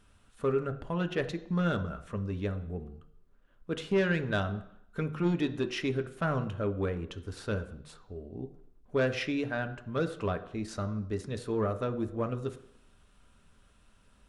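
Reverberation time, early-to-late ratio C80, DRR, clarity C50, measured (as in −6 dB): 0.70 s, 16.5 dB, 7.5 dB, 13.5 dB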